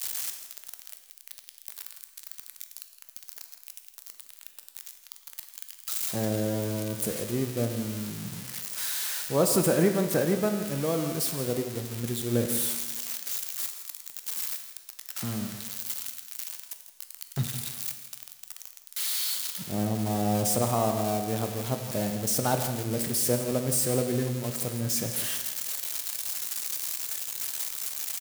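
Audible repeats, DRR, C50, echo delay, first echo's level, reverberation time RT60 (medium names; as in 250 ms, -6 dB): 1, 5.0 dB, 6.5 dB, 165 ms, -12.0 dB, 1.3 s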